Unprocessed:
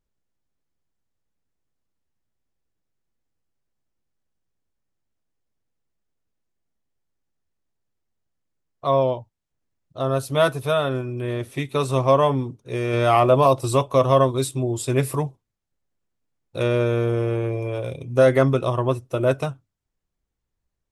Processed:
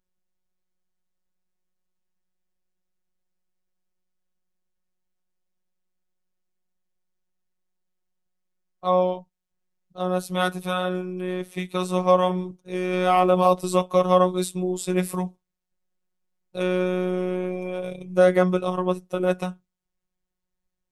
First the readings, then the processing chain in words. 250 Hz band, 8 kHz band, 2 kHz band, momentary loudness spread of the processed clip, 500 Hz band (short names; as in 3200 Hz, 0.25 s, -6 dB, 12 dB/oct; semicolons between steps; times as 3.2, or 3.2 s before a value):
+0.5 dB, -2.5 dB, -1.5 dB, 12 LU, -2.5 dB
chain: robotiser 182 Hz